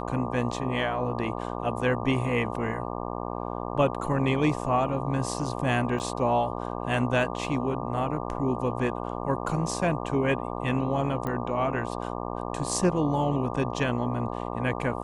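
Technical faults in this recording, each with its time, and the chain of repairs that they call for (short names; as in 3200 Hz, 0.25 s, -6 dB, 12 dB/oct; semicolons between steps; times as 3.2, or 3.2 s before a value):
buzz 60 Hz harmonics 20 -33 dBFS
5.99–6 gap 8.5 ms
11.27 pop -19 dBFS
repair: de-click; de-hum 60 Hz, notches 20; interpolate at 5.99, 8.5 ms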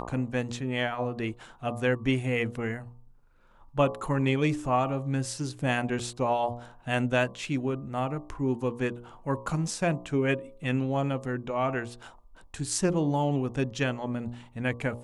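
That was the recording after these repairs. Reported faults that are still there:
none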